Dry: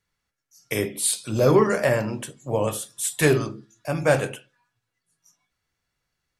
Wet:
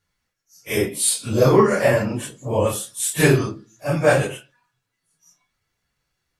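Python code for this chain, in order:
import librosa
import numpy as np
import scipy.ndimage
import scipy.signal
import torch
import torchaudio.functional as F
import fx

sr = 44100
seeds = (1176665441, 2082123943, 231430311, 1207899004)

y = fx.phase_scramble(x, sr, seeds[0], window_ms=100)
y = F.gain(torch.from_numpy(y), 3.5).numpy()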